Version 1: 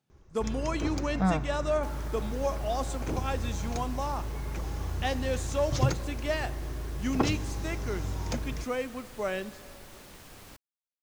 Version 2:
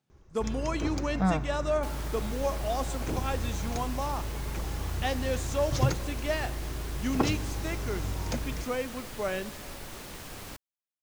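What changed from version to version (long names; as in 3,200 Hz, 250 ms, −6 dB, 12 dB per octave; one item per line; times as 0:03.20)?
second sound +7.0 dB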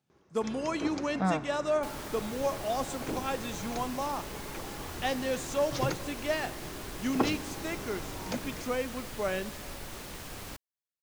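first sound: add band-pass filter 200–5,600 Hz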